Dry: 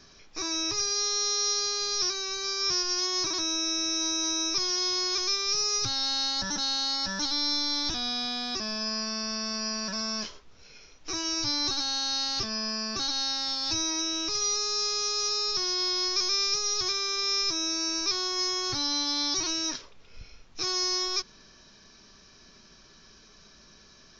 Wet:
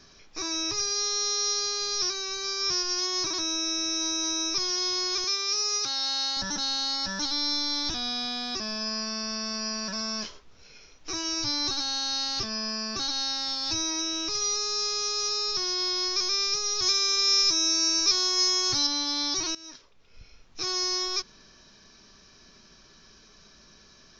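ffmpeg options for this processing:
-filter_complex "[0:a]asettb=1/sr,asplit=3[a][b][c];[a]atrim=end=5.244[d];[b]atrim=start=5.24:end=6.37,asetpts=PTS-STARTPTS,afade=t=in:d=0.004:c=qsin,afade=t=out:st=1.126:d=0.004:c=qsin,highpass=340[e];[c]atrim=start=6.366[f];[d][e]acrossfade=d=0.004:c1=hsin:c2=qsin[g];[g][f]acrossfade=d=0.004:c1=qsin:c2=hsin,asettb=1/sr,asplit=3[h][i][j];[h]atrim=end=16.824[k];[i]atrim=start=16.82:end=18.87,asetpts=PTS-STARTPTS,afade=t=in:d=0.004:c=qsin,afade=t=out:st=2.046:d=0.004:c=qsin,aemphasis=mode=production:type=50kf[l];[j]atrim=start=18.866[m];[k][l]acrossfade=d=0.004:c1=hsin:c2=qsin[n];[n][m]acrossfade=d=0.004:c1=qsin:c2=hsin,asplit=2[o][p];[o]atrim=end=19.55,asetpts=PTS-STARTPTS,afade=t=out:st=19.546:d=0.004:c=hsin:silence=0.11885[q];[p]atrim=start=19.55,asetpts=PTS-STARTPTS,afade=t=in:d=1.17:silence=0.11885[r];[q][r]concat=n=2:v=0:a=1"

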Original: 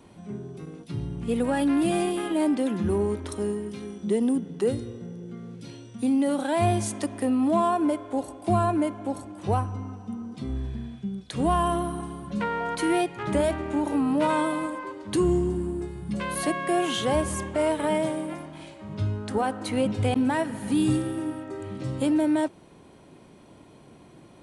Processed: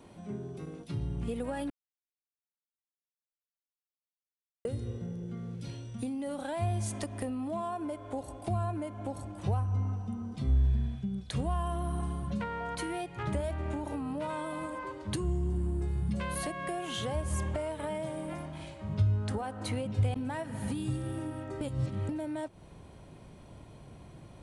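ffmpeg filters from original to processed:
-filter_complex "[0:a]asplit=5[a][b][c][d][e];[a]atrim=end=1.7,asetpts=PTS-STARTPTS,afade=t=out:st=1.696:d=0.004:c=hsin[f];[b]atrim=start=1.7:end=4.65,asetpts=PTS-STARTPTS,volume=0[g];[c]atrim=start=4.65:end=21.612,asetpts=PTS-STARTPTS,afade=t=in:d=0.004:c=hsin[h];[d]atrim=start=21.608:end=22.092,asetpts=PTS-STARTPTS,areverse[i];[e]atrim=start=22.088[j];[f][g][h]concat=n=3:v=0:a=1[k];[k][i]acrossfade=d=0.004:c1=hsin:c2=hsin[l];[l][j]acrossfade=d=0.004:c1=hsin:c2=hsin,equalizer=f=600:t=o:w=0.77:g=3,acompressor=threshold=-29dB:ratio=6,asubboost=boost=5:cutoff=120,volume=-2.5dB"

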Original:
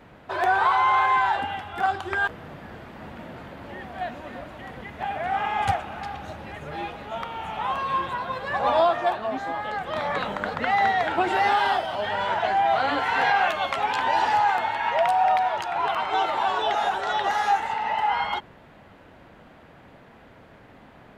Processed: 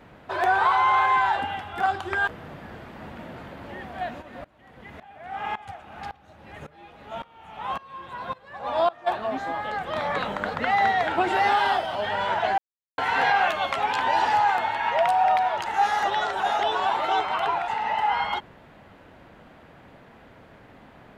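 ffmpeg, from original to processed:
-filter_complex "[0:a]asplit=3[a][b][c];[a]afade=t=out:st=4.21:d=0.02[d];[b]aeval=exprs='val(0)*pow(10,-22*if(lt(mod(-1.8*n/s,1),2*abs(-1.8)/1000),1-mod(-1.8*n/s,1)/(2*abs(-1.8)/1000),(mod(-1.8*n/s,1)-2*abs(-1.8)/1000)/(1-2*abs(-1.8)/1000))/20)':c=same,afade=t=in:st=4.21:d=0.02,afade=t=out:st=9.06:d=0.02[e];[c]afade=t=in:st=9.06:d=0.02[f];[d][e][f]amix=inputs=3:normalize=0,asplit=5[g][h][i][j][k];[g]atrim=end=12.58,asetpts=PTS-STARTPTS,afade=t=out:st=12.576:d=0.004:c=hsin[l];[h]atrim=start=12.58:end=12.98,asetpts=PTS-STARTPTS,volume=0[m];[i]atrim=start=12.98:end=15.662,asetpts=PTS-STARTPTS,afade=t=in:d=0.004:c=hsin[n];[j]atrim=start=15.658:end=17.682,asetpts=PTS-STARTPTS,areverse[o];[k]atrim=start=17.678[p];[l][m][n]concat=n=3:v=0:a=1[q];[q][o]acrossfade=d=0.004:c1=hsin:c2=hsin[r];[r][p]acrossfade=d=0.004:c1=hsin:c2=hsin"

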